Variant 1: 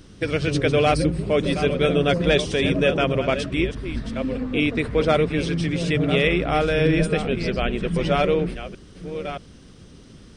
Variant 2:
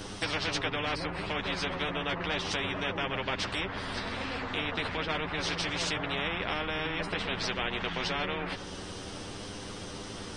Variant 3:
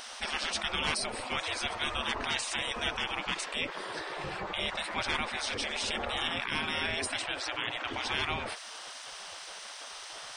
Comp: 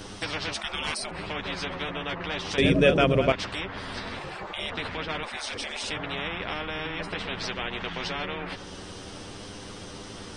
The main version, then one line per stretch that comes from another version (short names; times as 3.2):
2
0.54–1.11 from 3
2.58–3.32 from 1
4.19–4.7 from 3
5.23–5.91 from 3